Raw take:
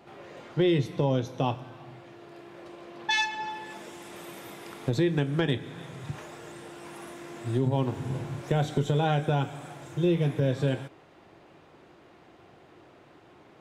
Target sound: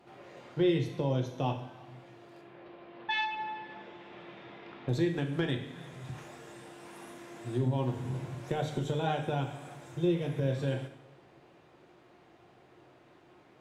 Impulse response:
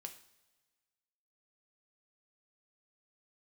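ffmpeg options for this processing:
-filter_complex "[0:a]asettb=1/sr,asplit=3[link_01][link_02][link_03];[link_01]atrim=end=2.414[link_04];[link_02]atrim=start=2.41:end=4.89,asetpts=PTS-STARTPTS,afade=type=in:duration=0.004:curve=qsin,afade=type=out:start_time=2.476:duration=0.004:curve=qsin,lowpass=frequency=3600:width=0.5412,lowpass=frequency=3600:width=1.3066[link_05];[link_03]atrim=start=4.886[link_06];[link_04][link_05]acrossfade=duration=0.004:curve1=hsin:curve2=qsin[link_07];[link_07][link_06]acrossfade=duration=0.004:curve1=qsin:curve2=hsin[link_08];[1:a]atrim=start_sample=2205,asetrate=35721,aresample=44100[link_09];[link_08][link_09]afir=irnorm=-1:irlink=0,volume=-1.5dB"

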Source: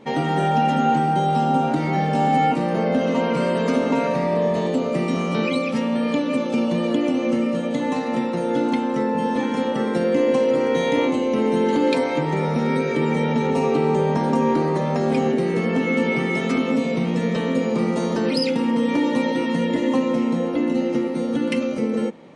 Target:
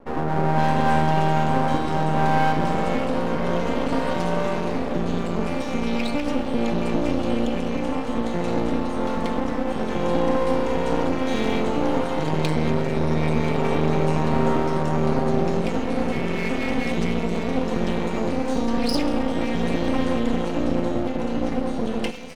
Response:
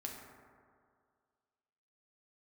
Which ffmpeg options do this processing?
-filter_complex "[0:a]acrossover=split=1500[link_01][link_02];[link_02]adelay=520[link_03];[link_01][link_03]amix=inputs=2:normalize=0,asplit=2[link_04][link_05];[1:a]atrim=start_sample=2205,afade=type=out:start_time=0.41:duration=0.01,atrim=end_sample=18522,asetrate=28665,aresample=44100[link_06];[link_05][link_06]afir=irnorm=-1:irlink=0,volume=-5dB[link_07];[link_04][link_07]amix=inputs=2:normalize=0,aeval=exprs='max(val(0),0)':channel_layout=same,volume=-2dB"

